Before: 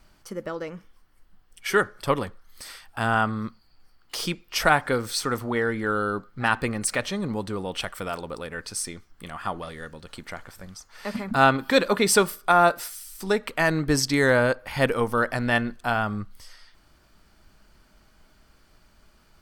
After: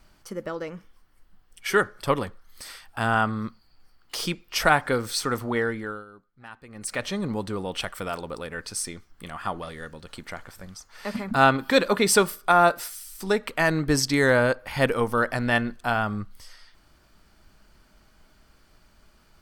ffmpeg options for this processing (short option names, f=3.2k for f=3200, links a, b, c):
-filter_complex "[0:a]asplit=3[a][b][c];[a]atrim=end=6.05,asetpts=PTS-STARTPTS,afade=t=out:st=5.6:d=0.45:silence=0.0891251[d];[b]atrim=start=6.05:end=6.68,asetpts=PTS-STARTPTS,volume=-21dB[e];[c]atrim=start=6.68,asetpts=PTS-STARTPTS,afade=t=in:d=0.45:silence=0.0891251[f];[d][e][f]concat=n=3:v=0:a=1"